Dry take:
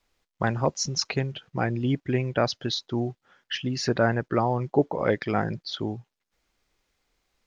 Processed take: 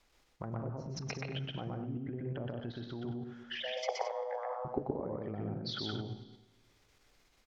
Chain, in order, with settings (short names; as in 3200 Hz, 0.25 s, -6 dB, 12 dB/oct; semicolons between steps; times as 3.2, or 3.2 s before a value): treble ducked by the level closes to 450 Hz, closed at -21 dBFS; compressor 10:1, threshold -31 dBFS, peak gain reduction 14.5 dB; Schroeder reverb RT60 1.5 s, combs from 26 ms, DRR 14 dB; level quantiser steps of 15 dB; 3.6–4.65 frequency shift +380 Hz; on a send: loudspeakers at several distances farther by 42 m -1 dB, 62 m -11 dB, 75 m -10 dB; on the sum: gain +4.5 dB